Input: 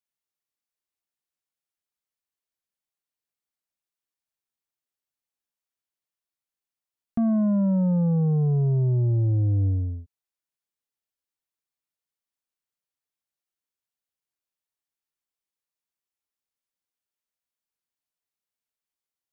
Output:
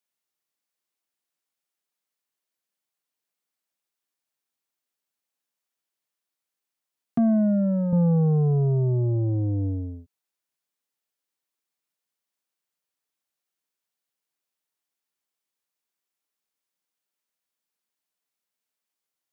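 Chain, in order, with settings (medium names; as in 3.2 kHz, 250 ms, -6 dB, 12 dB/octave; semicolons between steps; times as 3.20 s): high-pass 160 Hz 12 dB/octave; 7.18–7.93 s: static phaser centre 670 Hz, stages 8; trim +4.5 dB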